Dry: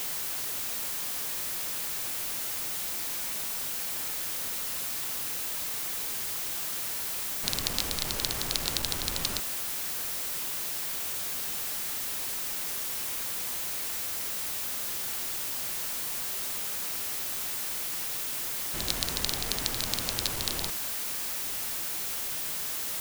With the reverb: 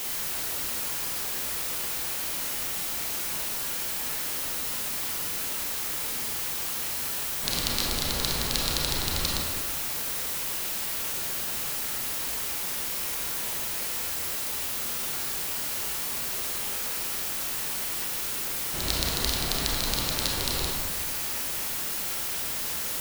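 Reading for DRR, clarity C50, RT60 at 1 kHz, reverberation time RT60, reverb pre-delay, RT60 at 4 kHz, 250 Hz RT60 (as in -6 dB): -2.0 dB, 0.5 dB, 1.2 s, 1.3 s, 27 ms, 0.70 s, 1.6 s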